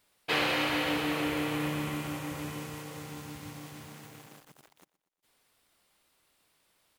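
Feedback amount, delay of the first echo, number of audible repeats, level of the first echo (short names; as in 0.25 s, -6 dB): 51%, 0.12 s, 3, -20.0 dB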